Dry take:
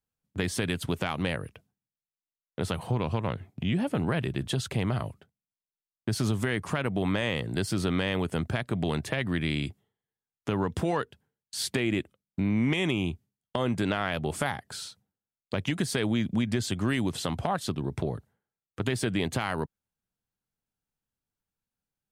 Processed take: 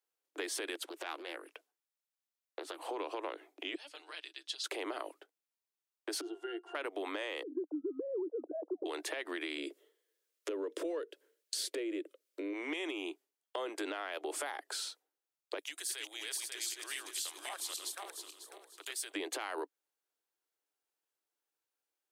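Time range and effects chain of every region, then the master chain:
0.75–2.89 s: resonant low shelf 230 Hz +9.5 dB, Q 3 + compression, threshold -29 dBFS + loudspeaker Doppler distortion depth 0.27 ms
3.75–4.64 s: band-pass filter 4.6 kHz, Q 2.2 + comb 6.6 ms, depth 52%
6.21–6.75 s: treble shelf 3.6 kHz +10 dB + pitch-class resonator F, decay 0.11 s
7.43–8.86 s: formants replaced by sine waves + inverse Chebyshev low-pass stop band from 2 kHz, stop band 60 dB
9.58–12.53 s: resonant low shelf 660 Hz +6 dB, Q 3 + band-stop 790 Hz, Q 7 + tape noise reduction on one side only encoder only
15.59–19.14 s: backward echo that repeats 272 ms, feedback 48%, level -1 dB + differentiator
whole clip: peak limiter -21 dBFS; steep high-pass 300 Hz 96 dB/octave; compression, threshold -36 dBFS; trim +1 dB

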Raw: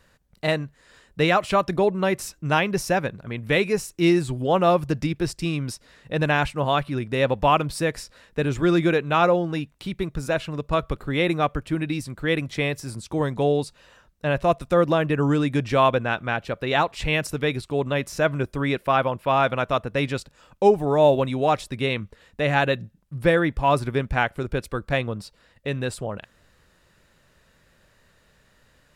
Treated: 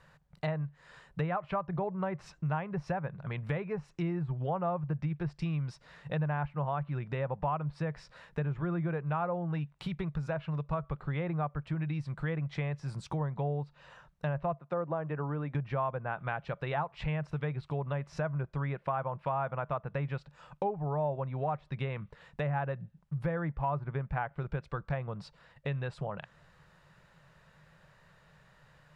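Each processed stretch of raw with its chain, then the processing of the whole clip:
14.59–15.55 s: high-pass 240 Hz + treble shelf 2 kHz -10 dB
whole clip: low-pass that closes with the level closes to 1.5 kHz, closed at -18.5 dBFS; FFT filter 100 Hz 0 dB, 150 Hz +13 dB, 250 Hz -6 dB, 870 Hz +8 dB, 11 kHz -7 dB; compression 3:1, threshold -29 dBFS; trim -5 dB

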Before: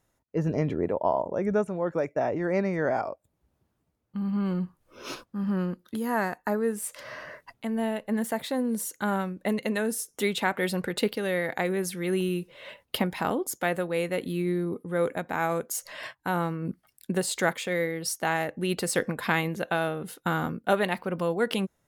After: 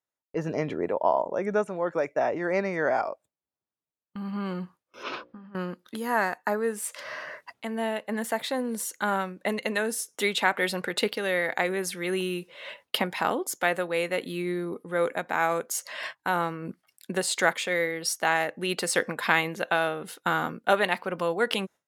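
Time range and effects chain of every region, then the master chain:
5.03–5.55 s: compressor with a negative ratio -38 dBFS + distance through air 290 m + hum notches 60/120/180/240/300/360/420/480/540/600 Hz
whole clip: frequency weighting A; gate with hold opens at -48 dBFS; bass shelf 140 Hz +8.5 dB; trim +3 dB

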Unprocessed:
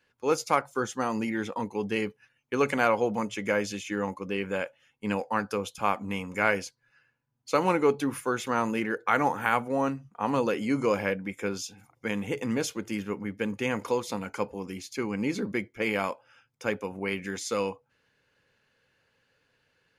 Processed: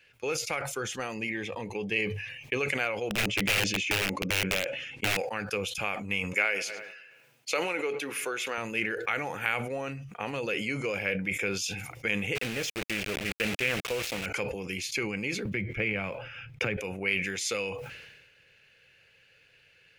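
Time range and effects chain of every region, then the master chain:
1.14–2.60 s: Butterworth band-stop 1.4 kHz, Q 4.6 + treble shelf 5.4 kHz -7 dB + hum notches 50/100/150 Hz
3.10–5.17 s: low-pass 6.8 kHz + peaking EQ 270 Hz +12.5 dB 1.4 oct + integer overflow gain 17.5 dB
6.33–8.58 s: high-pass 320 Hz + filtered feedback delay 106 ms, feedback 44%, low-pass 2.6 kHz, level -23.5 dB
12.35–14.26 s: low-pass 7.1 kHz 24 dB/octave + word length cut 6-bit, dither none + loudspeaker Doppler distortion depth 0.37 ms
15.45–16.77 s: block-companded coder 7-bit + tone controls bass +12 dB, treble -15 dB + three bands compressed up and down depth 70%
whole clip: compression 4:1, threshold -35 dBFS; fifteen-band graphic EQ 250 Hz -10 dB, 1 kHz -10 dB, 2.5 kHz +11 dB; decay stretcher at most 44 dB/s; trim +6 dB

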